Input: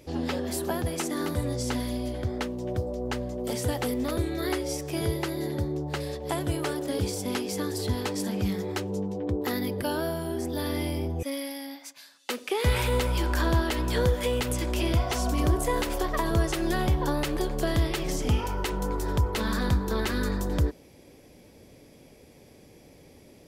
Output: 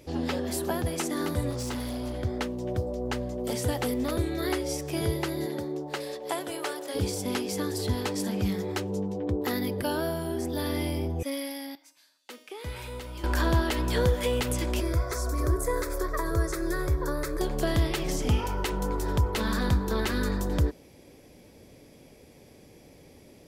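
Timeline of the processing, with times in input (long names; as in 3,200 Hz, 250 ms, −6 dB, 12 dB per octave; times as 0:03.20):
0:01.50–0:02.17: gain into a clipping stage and back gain 29.5 dB
0:05.45–0:06.94: high-pass filter 200 Hz → 560 Hz
0:11.75–0:13.24: tuned comb filter 310 Hz, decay 0.72 s, mix 80%
0:14.80–0:17.41: phaser with its sweep stopped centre 790 Hz, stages 6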